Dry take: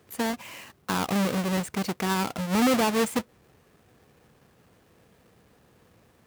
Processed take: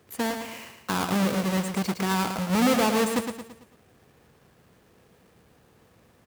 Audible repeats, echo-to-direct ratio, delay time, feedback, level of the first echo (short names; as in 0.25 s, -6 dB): 5, -6.0 dB, 0.112 s, 45%, -7.0 dB